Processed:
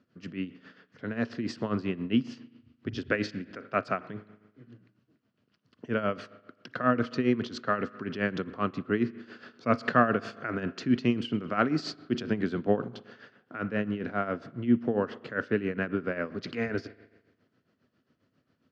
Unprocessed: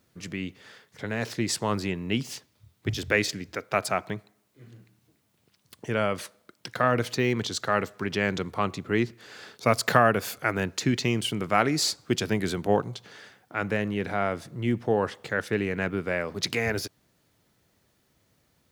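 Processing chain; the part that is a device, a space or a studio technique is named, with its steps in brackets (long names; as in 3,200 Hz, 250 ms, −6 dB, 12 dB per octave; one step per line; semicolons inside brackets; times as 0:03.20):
combo amplifier with spring reverb and tremolo (spring reverb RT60 1.2 s, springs 38 ms, chirp 25 ms, DRR 15.5 dB; amplitude tremolo 7.4 Hz, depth 72%; loudspeaker in its box 110–4,200 Hz, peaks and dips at 250 Hz +8 dB, 850 Hz −9 dB, 1,400 Hz +3 dB, 2,200 Hz −7 dB, 3,700 Hz −9 dB)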